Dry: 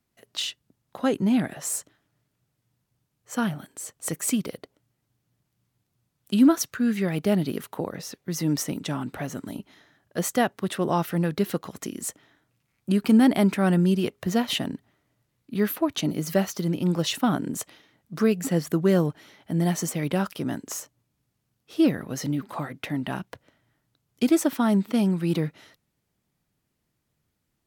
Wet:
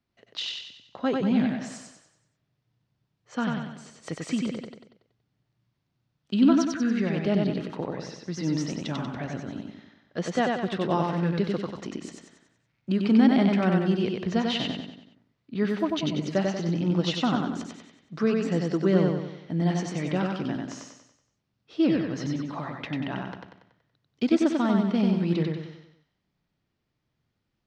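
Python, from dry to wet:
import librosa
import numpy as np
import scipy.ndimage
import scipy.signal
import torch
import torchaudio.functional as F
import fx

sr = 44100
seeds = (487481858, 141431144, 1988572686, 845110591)

p1 = scipy.signal.sosfilt(scipy.signal.butter(4, 5200.0, 'lowpass', fs=sr, output='sos'), x)
p2 = p1 + fx.echo_feedback(p1, sr, ms=94, feedback_pct=46, wet_db=-3, dry=0)
y = F.gain(torch.from_numpy(p2), -3.0).numpy()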